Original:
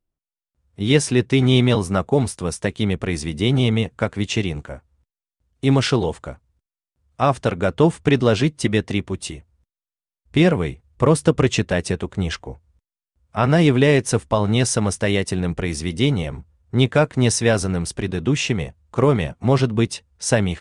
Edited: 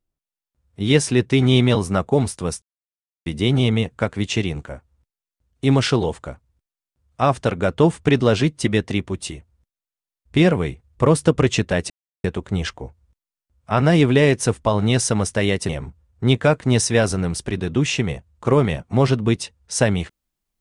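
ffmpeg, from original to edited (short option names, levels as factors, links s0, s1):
-filter_complex "[0:a]asplit=5[s0][s1][s2][s3][s4];[s0]atrim=end=2.62,asetpts=PTS-STARTPTS,afade=t=out:st=2.616:d=0.004:c=hsin[s5];[s1]atrim=start=2.62:end=3.26,asetpts=PTS-STARTPTS,volume=0[s6];[s2]atrim=start=3.26:end=11.9,asetpts=PTS-STARTPTS,afade=t=in:d=0.004:c=hsin,afade=t=out:st=8.636:d=0.004:c=hsin,apad=pad_dur=0.34[s7];[s3]atrim=start=11.9:end=15.352,asetpts=PTS-STARTPTS,afade=t=in:d=0.004:c=hsin[s8];[s4]atrim=start=16.198[s9];[s5][s6][s7][s8]concat=n=4:v=0:a=1[s10];[s10][s9]acrossfade=d=0.004:c1=hsin:c2=hsin"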